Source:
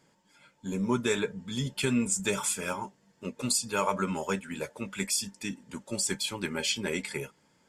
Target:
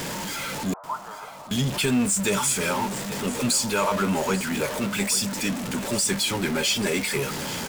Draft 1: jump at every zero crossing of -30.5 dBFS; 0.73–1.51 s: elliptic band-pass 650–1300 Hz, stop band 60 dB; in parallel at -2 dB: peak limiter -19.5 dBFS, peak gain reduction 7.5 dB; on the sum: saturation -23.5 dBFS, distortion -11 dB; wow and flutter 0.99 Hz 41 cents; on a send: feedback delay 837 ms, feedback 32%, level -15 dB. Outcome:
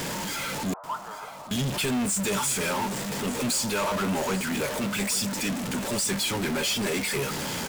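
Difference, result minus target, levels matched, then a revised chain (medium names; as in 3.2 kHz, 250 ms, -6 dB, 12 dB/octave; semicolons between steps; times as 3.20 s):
saturation: distortion +12 dB
jump at every zero crossing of -30.5 dBFS; 0.73–1.51 s: elliptic band-pass 650–1300 Hz, stop band 60 dB; in parallel at -2 dB: peak limiter -19.5 dBFS, peak gain reduction 7.5 dB; on the sum: saturation -13.5 dBFS, distortion -23 dB; wow and flutter 0.99 Hz 41 cents; on a send: feedback delay 837 ms, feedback 32%, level -15 dB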